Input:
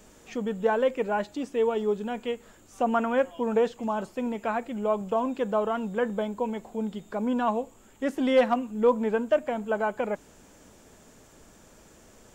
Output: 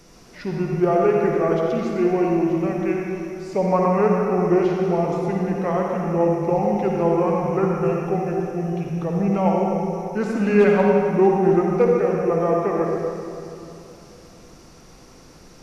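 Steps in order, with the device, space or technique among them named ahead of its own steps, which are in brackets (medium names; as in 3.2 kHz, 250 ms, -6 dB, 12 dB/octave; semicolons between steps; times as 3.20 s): slowed and reverbed (tape speed -21%; reverberation RT60 2.9 s, pre-delay 50 ms, DRR -1.5 dB); trim +3.5 dB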